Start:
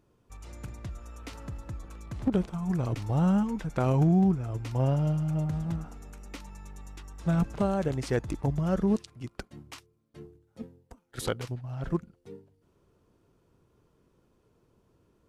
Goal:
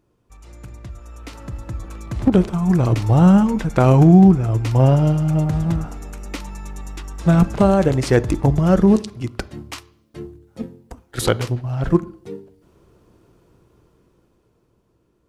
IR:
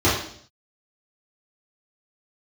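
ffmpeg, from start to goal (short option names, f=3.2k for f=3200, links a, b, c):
-filter_complex "[0:a]dynaudnorm=f=300:g=11:m=11.5dB,asplit=2[a][b];[1:a]atrim=start_sample=2205[c];[b][c]afir=irnorm=-1:irlink=0,volume=-36dB[d];[a][d]amix=inputs=2:normalize=0,volume=1dB"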